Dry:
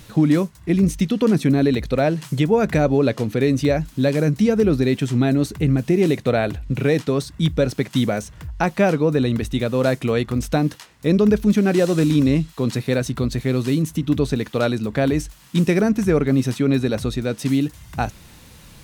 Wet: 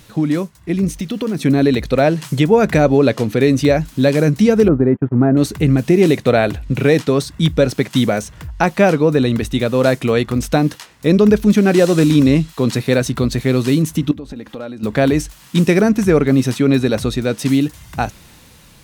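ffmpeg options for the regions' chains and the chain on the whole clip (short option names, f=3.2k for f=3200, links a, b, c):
-filter_complex "[0:a]asettb=1/sr,asplit=3[a][b][c];[a]atrim=end=0.894[d];[b]atrim=start=0.89:end=1.41,asetpts=PTS-STARTPTS,afade=t=in:d=0.004:c=qsin,afade=t=out:st=0.516:d=0.004:c=qsin,bandreject=f=7.6k:w=29,acompressor=threshold=-19dB:ratio=4:attack=3.2:release=140:knee=1:detection=peak,acrusher=bits=7:mix=0:aa=0.5[e];[c]atrim=start=1.406[f];[d][e]acrossfade=d=0.004:c1=hsin:c2=qsin[g];[g][f]acrossfade=d=0.004:c1=qsin:c2=hsin,asettb=1/sr,asplit=3[h][i][j];[h]atrim=end=4.684[k];[i]atrim=start=4.68:end=5.37,asetpts=PTS-STARTPTS,afade=t=in:d=0.004:c=qsin,afade=t=out:st=0.686:d=0.004:c=qsin,agate=range=-28dB:threshold=-24dB:ratio=16:release=100:detection=peak,lowpass=f=1.4k:w=0.5412,lowpass=f=1.4k:w=1.3066[l];[j]atrim=start=5.366[m];[k][l]acrossfade=d=0.004:c1=hsin:c2=qsin[n];[n][m]acrossfade=d=0.004:c1=qsin:c2=hsin,asettb=1/sr,asplit=3[o][p][q];[o]atrim=end=14.114[r];[p]atrim=start=14.11:end=14.83,asetpts=PTS-STARTPTS,afade=t=in:d=0.004:c=qsin,afade=t=out:st=0.716:d=0.004:c=qsin,highshelf=f=2.7k:g=-10,acompressor=threshold=-32dB:ratio=6:attack=3.2:release=140:knee=1:detection=peak,aecho=1:1:3.7:0.41,atrim=end_sample=31752[s];[q]atrim=start=14.826[t];[r][s]acrossfade=d=0.004:c1=hsin:c2=qsin[u];[u][t]acrossfade=d=0.004:c1=qsin:c2=hsin,lowshelf=f=160:g=-4,dynaudnorm=f=380:g=7:m=11.5dB"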